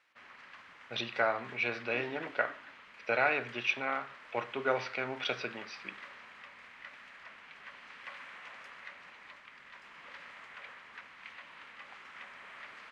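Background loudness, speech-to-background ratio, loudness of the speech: -49.5 LUFS, 16.0 dB, -33.5 LUFS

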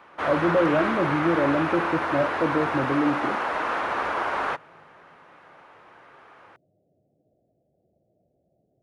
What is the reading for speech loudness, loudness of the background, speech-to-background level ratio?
-25.0 LUFS, -26.5 LUFS, 1.5 dB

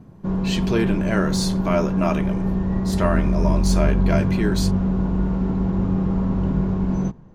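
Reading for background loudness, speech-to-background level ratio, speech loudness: -22.0 LUFS, -3.5 dB, -25.5 LUFS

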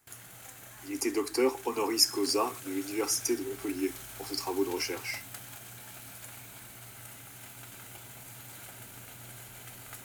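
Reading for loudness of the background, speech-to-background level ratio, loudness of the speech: -44.5 LUFS, 13.5 dB, -31.0 LUFS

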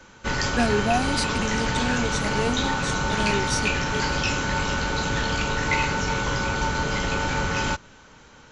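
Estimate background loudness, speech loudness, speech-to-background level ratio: -24.5 LUFS, -28.5 LUFS, -4.0 dB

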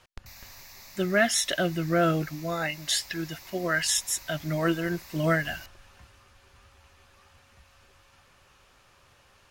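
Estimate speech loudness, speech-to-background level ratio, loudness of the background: -27.0 LUFS, 19.5 dB, -46.5 LUFS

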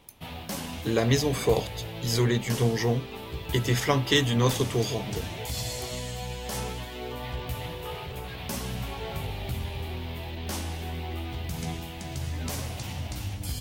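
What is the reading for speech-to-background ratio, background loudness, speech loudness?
9.0 dB, -35.0 LUFS, -26.0 LUFS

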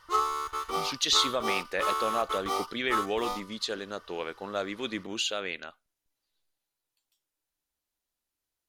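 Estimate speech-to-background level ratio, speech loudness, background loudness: 1.0 dB, -31.0 LUFS, -32.0 LUFS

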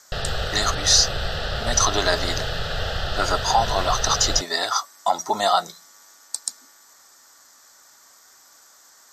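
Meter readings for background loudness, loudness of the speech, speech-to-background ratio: -27.5 LUFS, -21.5 LUFS, 6.0 dB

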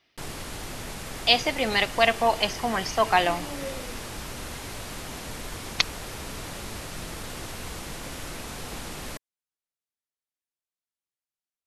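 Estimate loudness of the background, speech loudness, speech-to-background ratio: -36.5 LUFS, -24.0 LUFS, 12.5 dB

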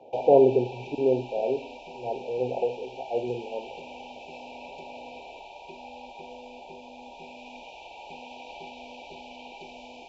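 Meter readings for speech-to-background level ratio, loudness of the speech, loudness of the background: 17.5 dB, -26.0 LUFS, -43.5 LUFS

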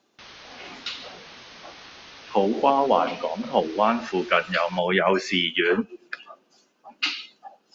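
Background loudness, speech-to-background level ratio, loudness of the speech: -43.5 LUFS, 20.0 dB, -23.5 LUFS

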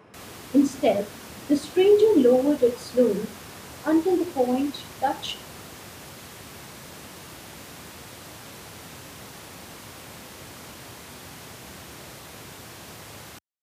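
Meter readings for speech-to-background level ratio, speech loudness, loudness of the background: 18.5 dB, -22.5 LUFS, -41.0 LUFS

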